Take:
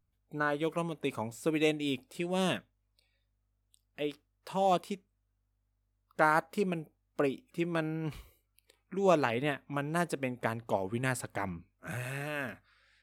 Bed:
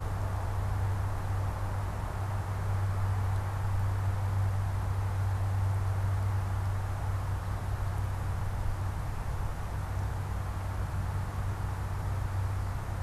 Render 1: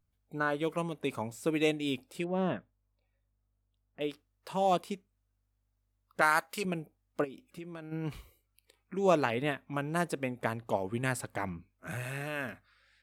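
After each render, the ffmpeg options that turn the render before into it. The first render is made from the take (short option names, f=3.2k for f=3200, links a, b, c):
-filter_complex "[0:a]asettb=1/sr,asplit=3[a][b][c];[a]atrim=end=2.244[d];[b]atrim=start=2.24:end=4.01,asetpts=PTS-STARTPTS,afade=t=in:d=0.004:c=qsin,afade=t=out:st=1.766:d=0.004:c=qsin,lowpass=1.4k[e];[c]atrim=start=4.006[f];[d][e]acrossfade=d=0.004:c1=hsin:c2=qsin[g];[g][f]acrossfade=d=0.004:c1=qsin:c2=hsin,asettb=1/sr,asplit=3[h][i][j];[h]atrim=end=6.214[k];[i]atrim=start=6.21:end=6.65,asetpts=PTS-STARTPTS,afade=t=in:d=0.004:c=qsin,afade=t=out:st=0.436:d=0.004:c=qsin,tiltshelf=f=1.1k:g=-8.5[l];[j]atrim=start=6.646[m];[k][l]acrossfade=d=0.004:c1=hsin:c2=qsin[n];[n][m]acrossfade=d=0.004:c1=qsin:c2=hsin,asplit=3[o][p][q];[o]afade=t=out:st=7.23:d=0.02[r];[p]acompressor=threshold=-42dB:ratio=4:attack=3.2:release=140:knee=1:detection=peak,afade=t=in:st=7.23:d=0.02,afade=t=out:st=7.91:d=0.02[s];[q]afade=t=in:st=7.91:d=0.02[t];[r][s][t]amix=inputs=3:normalize=0"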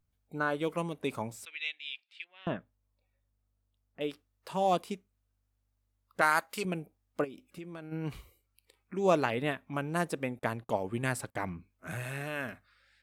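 -filter_complex "[0:a]asettb=1/sr,asplit=3[a][b][c];[a]atrim=end=1.454[d];[b]atrim=start=1.45:end=2.47,asetpts=PTS-STARTPTS,afade=t=in:d=0.004:c=qsin,afade=t=out:st=1.016:d=0.004:c=qsin,asuperpass=centerf=2800:order=4:qfactor=1.4[e];[c]atrim=start=2.466[f];[d][e]acrossfade=d=0.004:c1=hsin:c2=qsin[g];[g][f]acrossfade=d=0.004:c1=qsin:c2=hsin,asettb=1/sr,asplit=3[h][i][j];[h]atrim=end=10.394[k];[i]atrim=start=10.39:end=11.54,asetpts=PTS-STARTPTS,afade=t=in:d=0.004:c=qsin,afade=t=out:st=1.146:d=0.004:c=qsin,agate=range=-23dB:threshold=-51dB:ratio=16:release=100:detection=peak[l];[j]atrim=start=11.536[m];[k][l]acrossfade=d=0.004:c1=hsin:c2=qsin[n];[n][m]acrossfade=d=0.004:c1=qsin:c2=hsin"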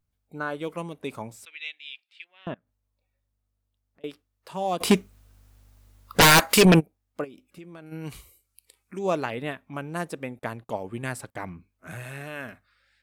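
-filter_complex "[0:a]asettb=1/sr,asplit=3[a][b][c];[a]atrim=end=2.544[d];[b]atrim=start=2.54:end=4.04,asetpts=PTS-STARTPTS,afade=t=in:d=0.004:c=qsin,afade=t=out:st=1.496:d=0.004:c=qsin,acompressor=threshold=-59dB:ratio=8:attack=3.2:release=140:knee=1:detection=peak[e];[c]atrim=start=4.036[f];[d][e]acrossfade=d=0.004:c1=hsin:c2=qsin[g];[g][f]acrossfade=d=0.004:c1=qsin:c2=hsin,asplit=3[h][i][j];[h]afade=t=out:st=4.8:d=0.02[k];[i]aeval=exprs='0.299*sin(PI/2*8.91*val(0)/0.299)':c=same,afade=t=in:st=4.8:d=0.02,afade=t=out:st=6.79:d=0.02[l];[j]afade=t=in:st=6.79:d=0.02[m];[k][l][m]amix=inputs=3:normalize=0,asettb=1/sr,asplit=3[n][o][p];[n]atrim=end=7.864[q];[o]atrim=start=7.86:end=8.99,asetpts=PTS-STARTPTS,afade=t=in:d=0.004:c=qsin,afade=t=out:st=1.126:d=0.004:c=qsin,equalizer=f=9.8k:w=0.42:g=13.5[r];[p]atrim=start=8.986[s];[q][r]acrossfade=d=0.004:c1=hsin:c2=qsin[t];[t][s]acrossfade=d=0.004:c1=qsin:c2=hsin"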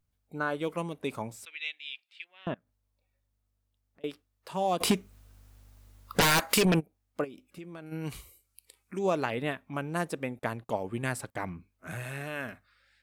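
-af "acompressor=threshold=-22dB:ratio=6"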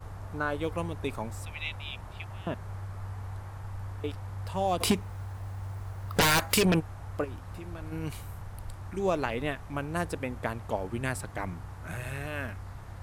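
-filter_complex "[1:a]volume=-8.5dB[a];[0:a][a]amix=inputs=2:normalize=0"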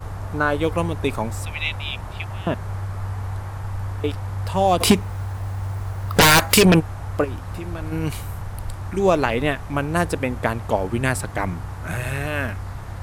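-af "volume=10.5dB,alimiter=limit=-3dB:level=0:latency=1"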